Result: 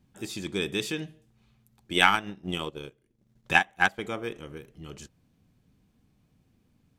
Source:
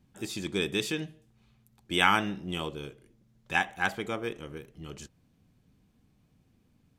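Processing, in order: 1.93–4.00 s: transient shaper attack +8 dB, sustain -12 dB

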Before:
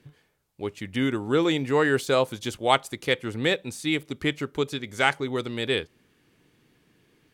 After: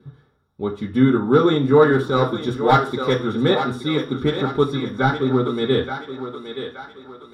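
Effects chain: one-sided wavefolder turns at -14 dBFS; 4.74–5.43 s: treble shelf 3.2 kHz -11.5 dB; thinning echo 874 ms, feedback 46%, high-pass 370 Hz, level -8 dB; 1.84–2.48 s: transient shaper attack -8 dB, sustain -3 dB; reverberation RT60 0.40 s, pre-delay 3 ms, DRR -2.5 dB; trim -5 dB

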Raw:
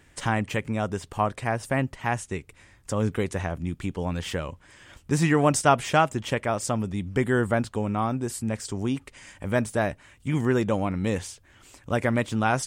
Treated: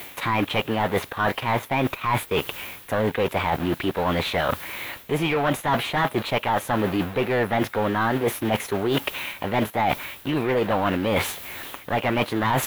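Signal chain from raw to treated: in parallel at -3 dB: word length cut 6-bit, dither none; on the sum: overdrive pedal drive 24 dB, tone 1.5 kHz, clips at -1.5 dBFS; added noise white -41 dBFS; reverse; compression 10:1, threshold -24 dBFS, peak gain reduction 17 dB; reverse; high-order bell 5.2 kHz -9 dB 1.3 oct; formant shift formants +4 st; trim +4 dB

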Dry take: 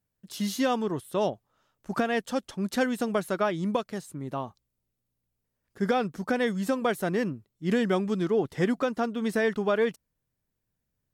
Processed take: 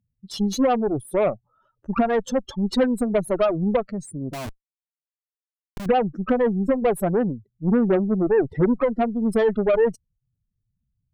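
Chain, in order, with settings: spectral contrast enhancement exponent 2.8; Chebyshev shaper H 5 -40 dB, 6 -19 dB, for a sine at -16 dBFS; 4.33–5.86 s: Schmitt trigger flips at -43.5 dBFS; trim +6.5 dB

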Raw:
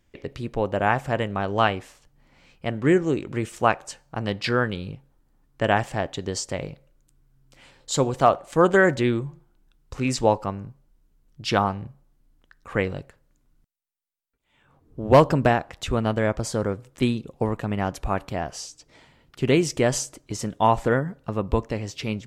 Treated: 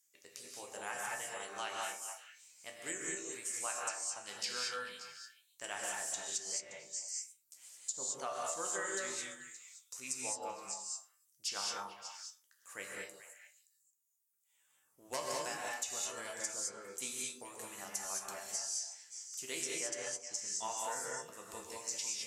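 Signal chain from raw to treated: differentiator; reverb removal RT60 0.86 s; resonant high shelf 5 kHz +10 dB, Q 1.5; chord resonator C2 major, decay 0.26 s; repeats whose band climbs or falls 143 ms, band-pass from 320 Hz, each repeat 1.4 oct, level -6 dB; low-pass that closes with the level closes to 880 Hz, closed at -28 dBFS; gated-style reverb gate 240 ms rising, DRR -2 dB; compression, threshold -40 dBFS, peak gain reduction 5.5 dB; trim +6 dB

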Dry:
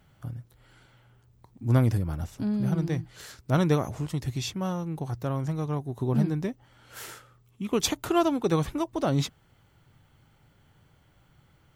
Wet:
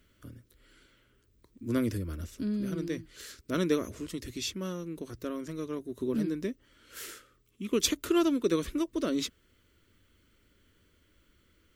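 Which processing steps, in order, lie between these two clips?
static phaser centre 330 Hz, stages 4

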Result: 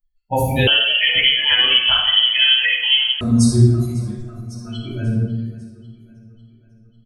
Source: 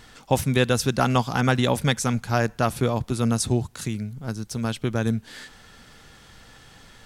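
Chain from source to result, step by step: expander on every frequency bin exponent 3; feedback delay 547 ms, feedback 56%, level -20.5 dB; simulated room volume 620 m³, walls mixed, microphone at 7.7 m; 0.67–3.21 s: frequency inversion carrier 3.2 kHz; trim -4 dB

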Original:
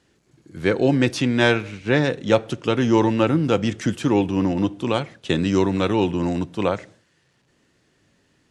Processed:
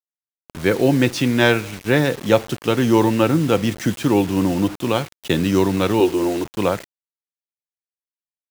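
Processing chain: 6.00–6.45 s: resonant low shelf 270 Hz -7.5 dB, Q 3; bit crusher 6-bit; trim +2 dB

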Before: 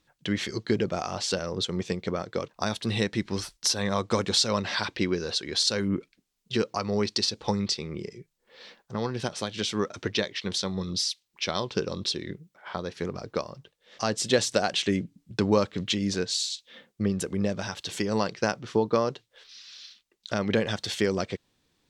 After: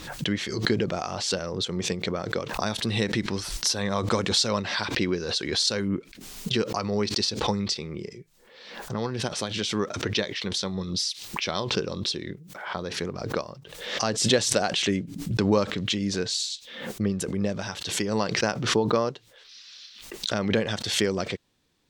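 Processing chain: swell ahead of each attack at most 58 dB/s

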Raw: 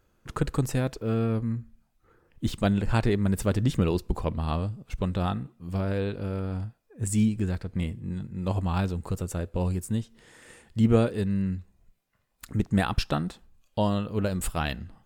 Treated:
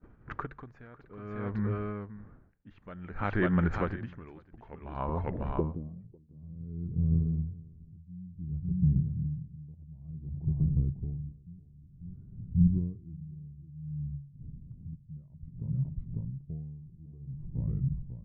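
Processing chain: gliding tape speed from 93% -> 72%; wind noise 120 Hz -41 dBFS; Chebyshev low-pass 7.1 kHz, order 8; de-hum 47.17 Hz, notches 3; expander -45 dBFS; bass shelf 160 Hz -5 dB; compression 2:1, threshold -33 dBFS, peak gain reduction 8.5 dB; low-pass sweep 1.7 kHz -> 150 Hz, 4.91–6.04 s; delay 548 ms -8 dB; logarithmic tremolo 0.56 Hz, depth 24 dB; trim +6 dB

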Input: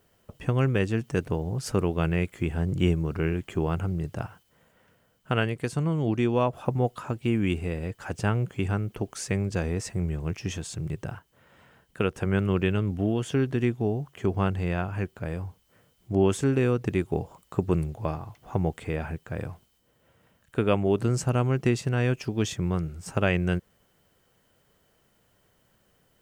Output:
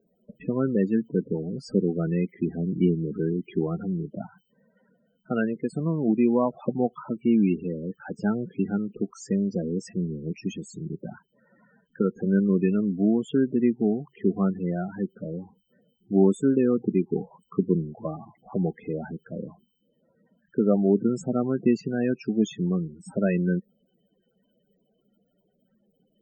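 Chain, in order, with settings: loudest bins only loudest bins 16; resonant low shelf 140 Hz -13 dB, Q 3

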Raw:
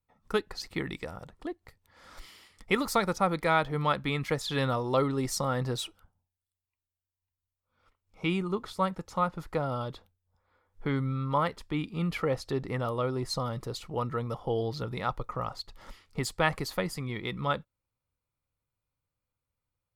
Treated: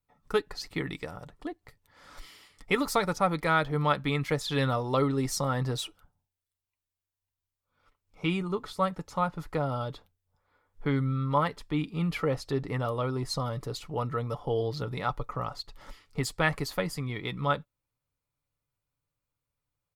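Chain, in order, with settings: comb 6.9 ms, depth 36%

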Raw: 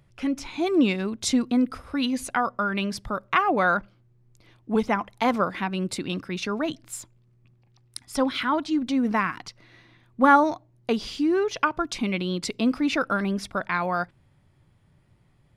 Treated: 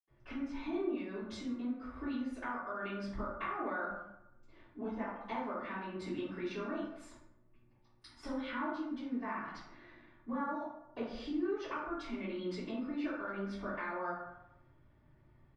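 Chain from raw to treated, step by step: comb 3.4 ms, depth 32%; compression 10:1, threshold -32 dBFS, peak gain reduction 21 dB; reverberation RT60 0.85 s, pre-delay 76 ms, DRR -60 dB; trim +3.5 dB

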